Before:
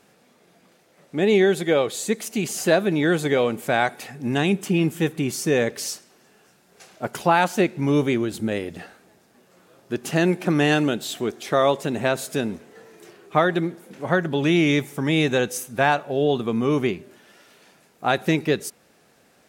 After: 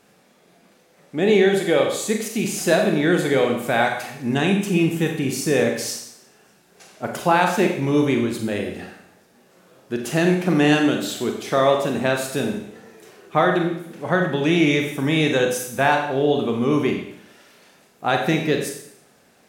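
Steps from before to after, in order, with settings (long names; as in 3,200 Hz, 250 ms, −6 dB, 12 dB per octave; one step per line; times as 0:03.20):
four-comb reverb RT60 0.71 s, combs from 30 ms, DRR 2.5 dB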